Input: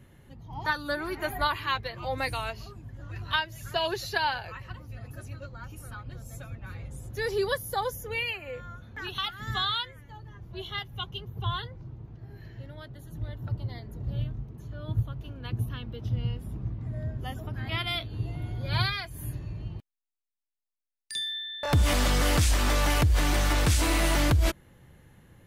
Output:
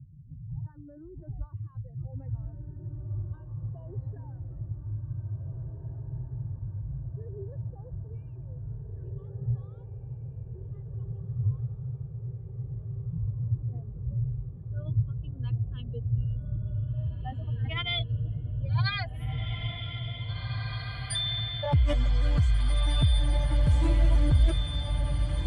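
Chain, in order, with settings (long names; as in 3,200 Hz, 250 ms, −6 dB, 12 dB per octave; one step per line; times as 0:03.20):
expanding power law on the bin magnitudes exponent 2.1
low-pass filter sweep 150 Hz → 8,400 Hz, 0:13.06–0:15.54
feedback delay with all-pass diffusion 1,948 ms, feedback 70%, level −5 dB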